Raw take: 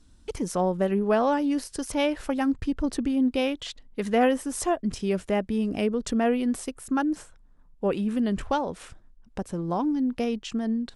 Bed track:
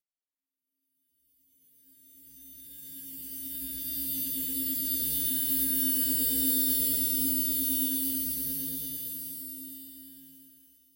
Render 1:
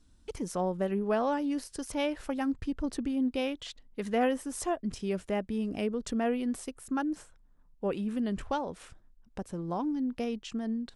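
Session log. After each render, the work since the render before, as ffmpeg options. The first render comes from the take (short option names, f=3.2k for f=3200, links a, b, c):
-af "volume=-6dB"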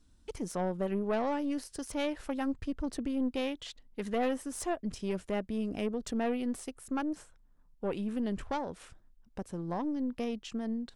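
-af "aeval=exprs='(tanh(15.8*val(0)+0.45)-tanh(0.45))/15.8':c=same"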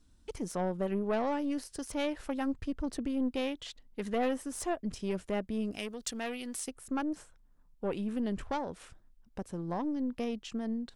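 -filter_complex "[0:a]asettb=1/sr,asplit=3[a][b][c];[a]atrim=end=5.714[d];[b]atrim=start=5.71:end=6.68,asetpts=PTS-STARTPTS,afade=t=in:d=0.004:c=qsin,afade=t=out:st=0.966:d=0.004:c=qsin,tiltshelf=f=1.5k:g=-8.5[e];[c]atrim=start=6.676[f];[d][e]acrossfade=d=0.004:c1=hsin:c2=qsin[g];[g][f]acrossfade=d=0.004:c1=qsin:c2=hsin"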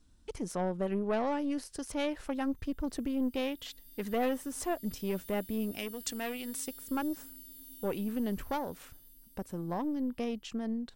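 -filter_complex "[1:a]volume=-22.5dB[a];[0:a][a]amix=inputs=2:normalize=0"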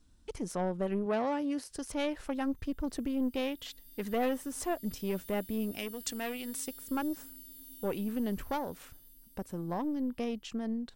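-filter_complex "[0:a]asettb=1/sr,asplit=3[a][b][c];[a]atrim=end=1.064[d];[b]atrim=start=1.06:end=1.71,asetpts=PTS-STARTPTS,afade=t=in:d=0.004:c=qsin,afade=t=out:st=0.646:d=0.004:c=qsin,highpass=71[e];[c]atrim=start=1.706[f];[d][e]acrossfade=d=0.004:c1=hsin:c2=qsin[g];[g][f]acrossfade=d=0.004:c1=qsin:c2=hsin"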